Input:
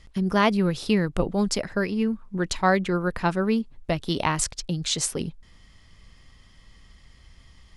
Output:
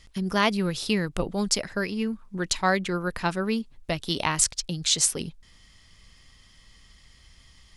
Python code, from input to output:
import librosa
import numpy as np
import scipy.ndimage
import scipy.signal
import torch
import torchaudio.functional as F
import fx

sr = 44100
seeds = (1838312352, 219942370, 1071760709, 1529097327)

y = fx.high_shelf(x, sr, hz=2200.0, db=9.5)
y = y * librosa.db_to_amplitude(-4.0)